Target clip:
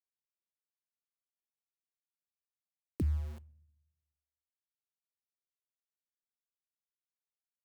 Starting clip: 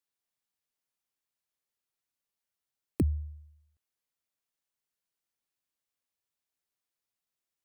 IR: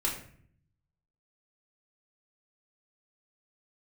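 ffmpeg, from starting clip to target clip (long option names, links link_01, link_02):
-filter_complex "[0:a]alimiter=level_in=1.5dB:limit=-24dB:level=0:latency=1:release=100,volume=-1.5dB,aeval=exprs='val(0)*gte(abs(val(0)),0.00501)':channel_layout=same,asplit=2[link_01][link_02];[1:a]atrim=start_sample=2205[link_03];[link_02][link_03]afir=irnorm=-1:irlink=0,volume=-26.5dB[link_04];[link_01][link_04]amix=inputs=2:normalize=0"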